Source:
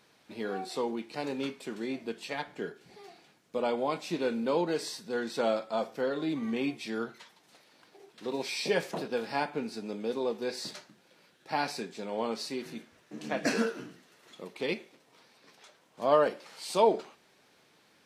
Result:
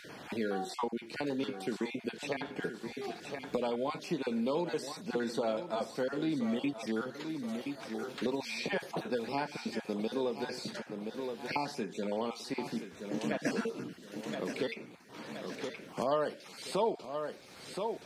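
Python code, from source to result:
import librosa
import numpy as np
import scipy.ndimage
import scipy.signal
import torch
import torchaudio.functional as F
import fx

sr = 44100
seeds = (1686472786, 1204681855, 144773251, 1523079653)

y = fx.spec_dropout(x, sr, seeds[0], share_pct=21)
y = fx.recorder_agc(y, sr, target_db=-21.5, rise_db_per_s=5.7, max_gain_db=30)
y = fx.low_shelf(y, sr, hz=270.0, db=5.0)
y = fx.echo_feedback(y, sr, ms=1023, feedback_pct=27, wet_db=-12.0)
y = fx.band_squash(y, sr, depth_pct=70)
y = F.gain(torch.from_numpy(y), -4.0).numpy()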